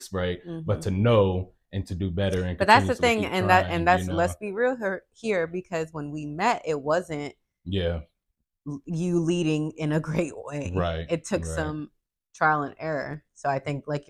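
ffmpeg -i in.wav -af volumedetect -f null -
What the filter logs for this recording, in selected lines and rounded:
mean_volume: -26.0 dB
max_volume: -3.6 dB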